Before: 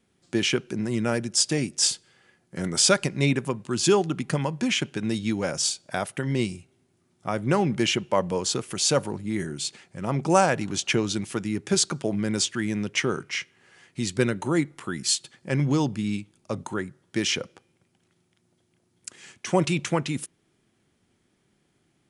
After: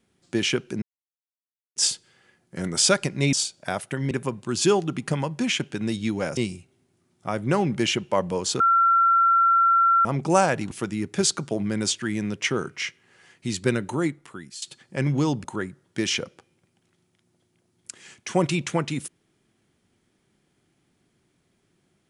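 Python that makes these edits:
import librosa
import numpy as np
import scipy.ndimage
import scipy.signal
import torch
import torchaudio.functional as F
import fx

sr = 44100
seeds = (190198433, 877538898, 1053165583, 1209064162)

y = fx.edit(x, sr, fx.silence(start_s=0.82, length_s=0.94),
    fx.move(start_s=5.59, length_s=0.78, to_s=3.33),
    fx.bleep(start_s=8.6, length_s=1.45, hz=1360.0, db=-15.0),
    fx.cut(start_s=10.71, length_s=0.53),
    fx.fade_out_to(start_s=14.44, length_s=0.71, floor_db=-20.0),
    fx.cut(start_s=15.97, length_s=0.65), tone=tone)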